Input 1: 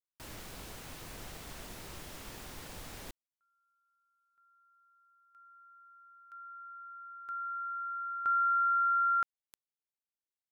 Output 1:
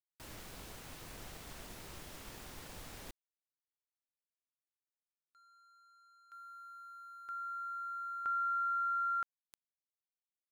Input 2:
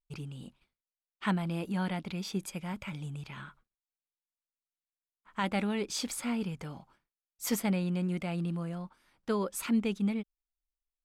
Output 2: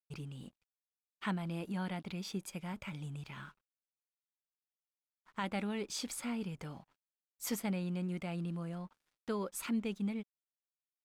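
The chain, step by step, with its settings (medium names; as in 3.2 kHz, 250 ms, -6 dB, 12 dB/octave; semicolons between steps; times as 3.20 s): in parallel at 0 dB: compression, threshold -37 dBFS; on the sum: crossover distortion -58.5 dBFS; trim -8.5 dB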